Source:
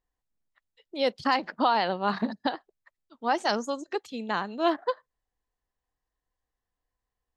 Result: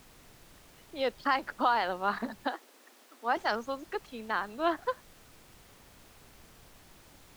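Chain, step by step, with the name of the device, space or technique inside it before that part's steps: horn gramophone (BPF 240–4200 Hz; bell 1400 Hz +6 dB; wow and flutter; pink noise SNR 21 dB); 2.45–3.37 elliptic high-pass 240 Hz, stop band 40 dB; gain -5 dB

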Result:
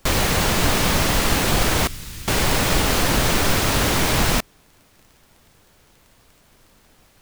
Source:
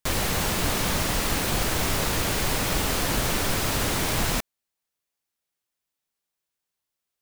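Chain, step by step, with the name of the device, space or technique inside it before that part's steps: 1.87–2.28 passive tone stack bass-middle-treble 6-0-2; record under a worn stylus (tracing distortion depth 0.071 ms; crackle 21/s; pink noise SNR 34 dB); gain +6.5 dB

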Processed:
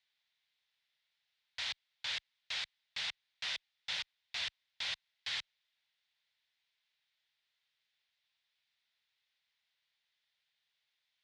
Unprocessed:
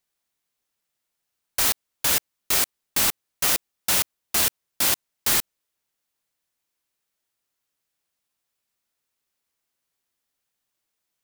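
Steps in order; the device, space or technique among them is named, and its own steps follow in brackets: scooped metal amplifier (tube stage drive 34 dB, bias 0.3; speaker cabinet 110–4200 Hz, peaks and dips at 1200 Hz -6 dB, 2000 Hz +4 dB, 3600 Hz +5 dB; passive tone stack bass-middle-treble 10-0-10); gain +6.5 dB

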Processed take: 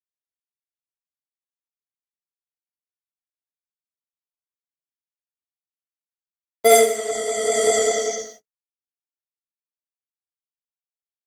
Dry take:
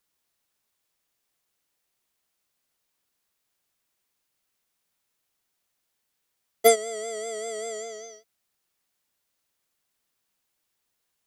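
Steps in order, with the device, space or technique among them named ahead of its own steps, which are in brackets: 6.96–8.14 low shelf 180 Hz +5.5 dB; speakerphone in a meeting room (reverb RT60 0.55 s, pre-delay 40 ms, DRR -5.5 dB; AGC gain up to 10 dB; gate -42 dBFS, range -45 dB; Opus 16 kbps 48000 Hz)

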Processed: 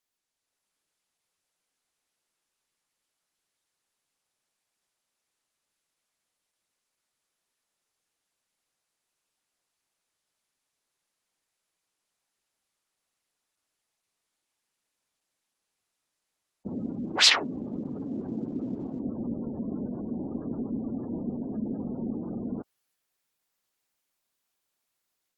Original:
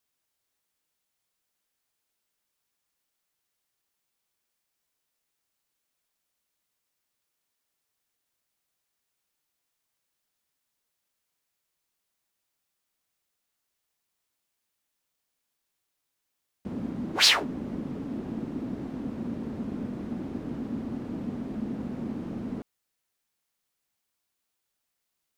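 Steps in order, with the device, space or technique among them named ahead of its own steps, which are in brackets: noise-suppressed video call (HPF 120 Hz 6 dB/oct; spectral gate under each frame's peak -25 dB strong; AGC gain up to 6 dB; gain -4 dB; Opus 16 kbps 48000 Hz)

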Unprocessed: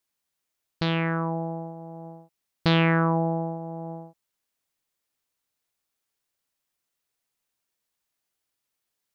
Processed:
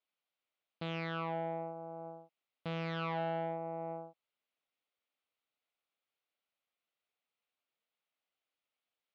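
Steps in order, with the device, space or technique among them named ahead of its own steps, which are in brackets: guitar amplifier (tube stage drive 29 dB, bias 0.6; tone controls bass -13 dB, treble -5 dB; speaker cabinet 95–3800 Hz, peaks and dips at 370 Hz -6 dB, 960 Hz -6 dB, 1700 Hz -8 dB); gain +1.5 dB

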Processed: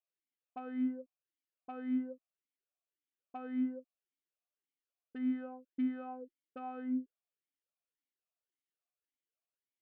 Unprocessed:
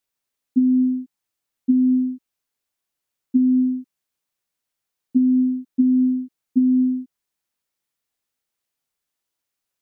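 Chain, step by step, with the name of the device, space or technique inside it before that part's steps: talk box (tube stage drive 27 dB, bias 0.7; vowel sweep a-i 1.8 Hz); gain +1 dB

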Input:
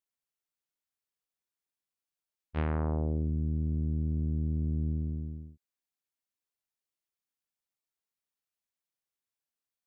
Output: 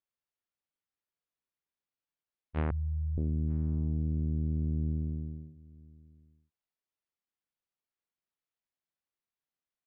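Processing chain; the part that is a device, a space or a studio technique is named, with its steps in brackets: shout across a valley (air absorption 200 m; outdoor echo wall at 160 m, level -23 dB); 2.71–3.18 inverse Chebyshev band-stop 230–2600 Hz, stop band 40 dB

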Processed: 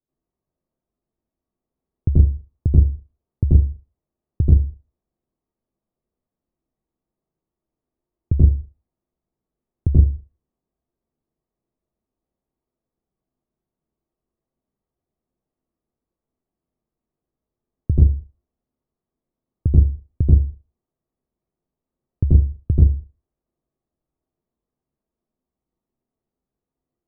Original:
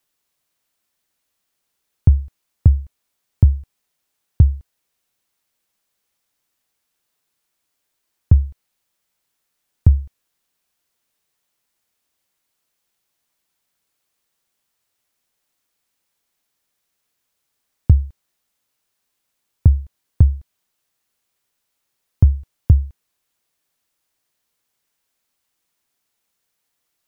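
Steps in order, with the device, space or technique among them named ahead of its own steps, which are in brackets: television next door (compressor 4:1, threshold -13 dBFS, peak gain reduction 6.5 dB; LPF 390 Hz 12 dB/oct; reverb RT60 0.30 s, pre-delay 81 ms, DRR -9.5 dB); gain -3 dB

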